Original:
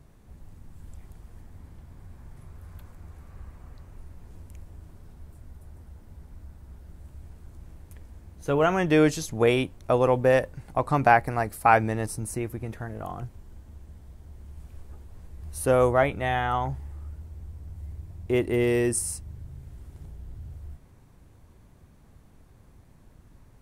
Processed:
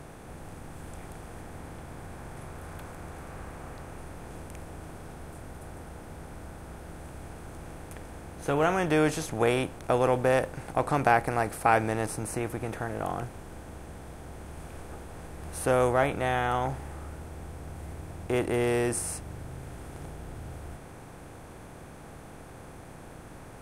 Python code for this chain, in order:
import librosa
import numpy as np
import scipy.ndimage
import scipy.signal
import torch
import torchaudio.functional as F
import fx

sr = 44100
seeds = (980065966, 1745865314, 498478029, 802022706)

y = fx.bin_compress(x, sr, power=0.6)
y = y * librosa.db_to_amplitude(-6.0)